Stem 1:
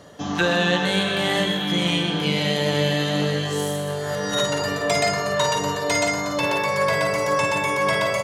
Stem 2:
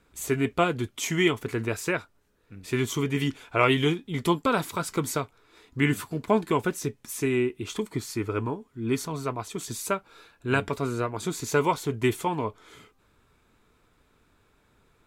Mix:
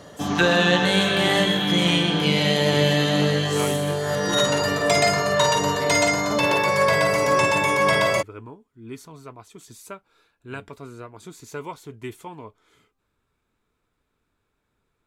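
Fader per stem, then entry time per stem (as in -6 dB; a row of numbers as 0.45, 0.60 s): +2.0, -10.5 dB; 0.00, 0.00 s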